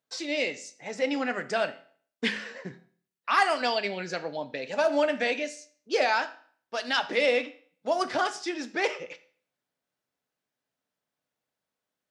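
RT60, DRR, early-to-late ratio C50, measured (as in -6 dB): 0.50 s, 10.0 dB, 16.0 dB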